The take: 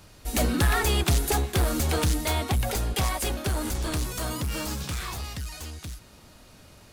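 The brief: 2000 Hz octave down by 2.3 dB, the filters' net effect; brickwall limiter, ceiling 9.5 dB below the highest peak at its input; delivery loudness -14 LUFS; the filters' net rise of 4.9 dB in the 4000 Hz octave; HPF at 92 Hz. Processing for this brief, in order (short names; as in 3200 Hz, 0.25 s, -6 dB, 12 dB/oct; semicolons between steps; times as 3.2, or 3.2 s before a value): HPF 92 Hz; bell 2000 Hz -5 dB; bell 4000 Hz +7.5 dB; gain +16.5 dB; limiter -3.5 dBFS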